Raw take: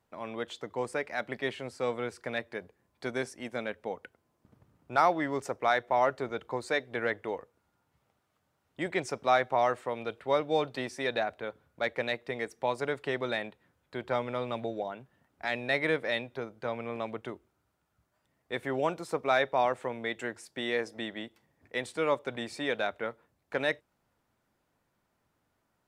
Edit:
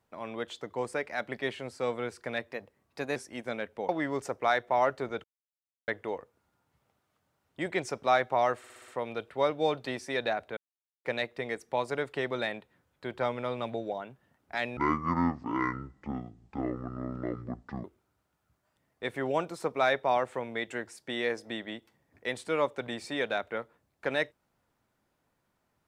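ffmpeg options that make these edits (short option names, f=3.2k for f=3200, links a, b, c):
-filter_complex "[0:a]asplit=15[a][b][c][d][e][f][g][h][i][j][k][l][m][n][o];[a]atrim=end=2.514[p];[b]atrim=start=2.51:end=3.23,asetpts=PTS-STARTPTS,asetrate=48951,aresample=44100,atrim=end_sample=28605,asetpts=PTS-STARTPTS[q];[c]atrim=start=3.226:end=3.962[r];[d]atrim=start=5.088:end=6.44,asetpts=PTS-STARTPTS,afade=t=out:st=1.348:d=0.004:c=hsin[s];[e]atrim=start=6.44:end=7.08,asetpts=PTS-STARTPTS,volume=0[t];[f]atrim=start=7.08:end=9.842,asetpts=PTS-STARTPTS,afade=t=in:d=0.004:c=hsin[u];[g]atrim=start=9.778:end=9.842[v];[h]atrim=start=9.778:end=9.842[w];[i]atrim=start=9.778:end=9.842[x];[j]atrim=start=9.778:end=9.842[y];[k]atrim=start=9.778:end=11.47,asetpts=PTS-STARTPTS,afade=t=out:st=1.688:d=0.004:c=hsin[z];[l]atrim=start=11.47:end=11.95,asetpts=PTS-STARTPTS,volume=0[aa];[m]atrim=start=11.95:end=15.674,asetpts=PTS-STARTPTS,afade=t=in:d=0.004:c=hsin[ab];[n]atrim=start=15.67:end=17.33,asetpts=PTS-STARTPTS,asetrate=23814,aresample=44100[ac];[o]atrim=start=17.326[ad];[p][q]acrossfade=d=0.004:c1=hsin:c2=hsin[ae];[ae][r]acrossfade=d=0.004:c1=hsin:c2=hsin[af];[s][t][u]concat=n=3:v=0:a=1[ag];[af][ag]acrossfade=d=0.004:c1=hsin:c2=hsin[ah];[ah][v]acrossfade=d=0.004:c1=hsin:c2=hsin[ai];[ai][w]acrossfade=d=0.004:c1=hsin:c2=hsin[aj];[aj][x]acrossfade=d=0.004:c1=hsin:c2=hsin[ak];[ak][y]acrossfade=d=0.004:c1=hsin:c2=hsin[al];[z][aa][ab]concat=n=3:v=0:a=1[am];[al][am]acrossfade=d=0.004:c1=hsin:c2=hsin[an];[an][ac]acrossfade=d=0.004:c1=hsin:c2=hsin[ao];[ao][ad]acrossfade=d=0.004:c1=hsin:c2=hsin"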